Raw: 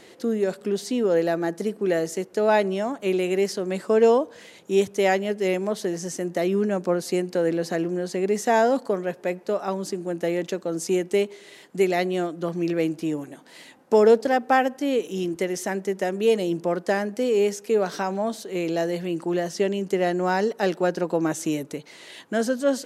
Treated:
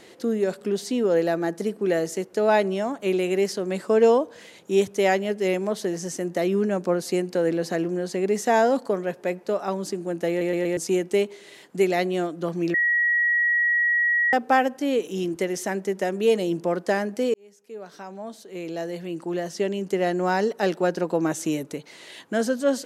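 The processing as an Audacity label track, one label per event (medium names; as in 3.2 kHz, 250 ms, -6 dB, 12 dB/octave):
10.290000	10.290000	stutter in place 0.12 s, 4 plays
12.740000	14.330000	bleep 1.91 kHz -18 dBFS
17.340000	20.250000	fade in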